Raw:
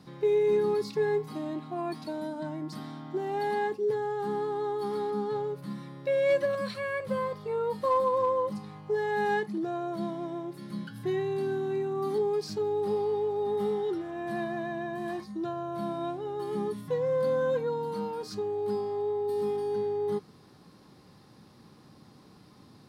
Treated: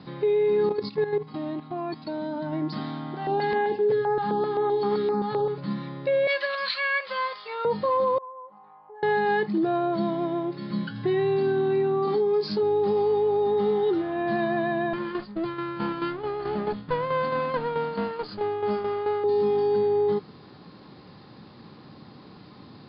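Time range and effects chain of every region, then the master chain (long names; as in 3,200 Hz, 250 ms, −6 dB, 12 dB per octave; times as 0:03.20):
0:00.69–0:02.53: low-shelf EQ 79 Hz +8 dB + output level in coarse steps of 13 dB
0:03.14–0:05.58: repeating echo 78 ms, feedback 43%, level −11.5 dB + notch on a step sequencer 7.7 Hz 370–7,600 Hz
0:06.27–0:07.65: high-pass filter 1,100 Hz + high-shelf EQ 2,100 Hz +8.5 dB
0:08.18–0:09.03: four-pole ladder band-pass 1,000 Hz, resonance 55% + spectral tilt −3.5 dB per octave + downward compressor 2 to 1, threshold −57 dBFS
0:12.05–0:12.63: high-pass filter 130 Hz + double-tracking delay 24 ms −5 dB + downward compressor 4 to 1, threshold −29 dBFS
0:14.93–0:19.24: lower of the sound and its delayed copy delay 0.65 ms + Chebyshev low-pass filter 5,100 Hz, order 6 + shaped tremolo saw down 4.6 Hz, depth 60%
whole clip: Butterworth low-pass 4,900 Hz 96 dB per octave; low-shelf EQ 74 Hz −6.5 dB; brickwall limiter −25.5 dBFS; level +8.5 dB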